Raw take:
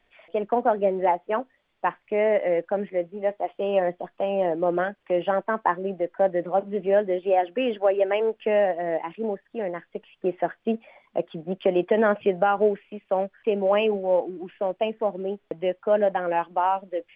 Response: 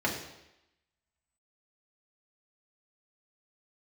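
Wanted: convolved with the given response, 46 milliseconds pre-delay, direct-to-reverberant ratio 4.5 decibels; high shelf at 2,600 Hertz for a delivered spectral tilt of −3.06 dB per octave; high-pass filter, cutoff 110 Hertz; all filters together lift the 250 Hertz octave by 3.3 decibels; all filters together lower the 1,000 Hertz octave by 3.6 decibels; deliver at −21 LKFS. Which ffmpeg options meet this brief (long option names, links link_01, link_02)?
-filter_complex "[0:a]highpass=110,equalizer=frequency=250:width_type=o:gain=5.5,equalizer=frequency=1000:width_type=o:gain=-6.5,highshelf=frequency=2600:gain=6,asplit=2[link_01][link_02];[1:a]atrim=start_sample=2205,adelay=46[link_03];[link_02][link_03]afir=irnorm=-1:irlink=0,volume=-14.5dB[link_04];[link_01][link_04]amix=inputs=2:normalize=0,volume=2.5dB"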